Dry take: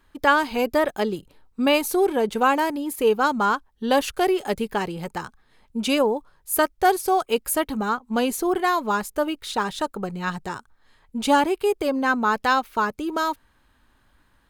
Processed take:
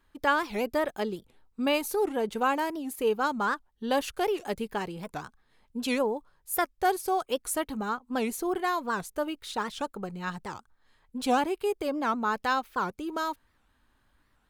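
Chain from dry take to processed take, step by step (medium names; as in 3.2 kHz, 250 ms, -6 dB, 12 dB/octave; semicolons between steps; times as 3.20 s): warped record 78 rpm, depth 250 cents; trim -7 dB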